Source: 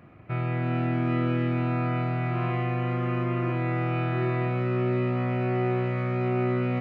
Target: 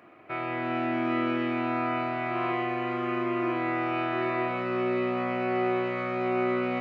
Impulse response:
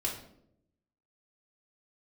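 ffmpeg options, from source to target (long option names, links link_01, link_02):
-filter_complex "[0:a]highpass=380,asplit=2[link_01][link_02];[1:a]atrim=start_sample=2205,lowshelf=frequency=140:gain=6[link_03];[link_02][link_03]afir=irnorm=-1:irlink=0,volume=-8.5dB[link_04];[link_01][link_04]amix=inputs=2:normalize=0"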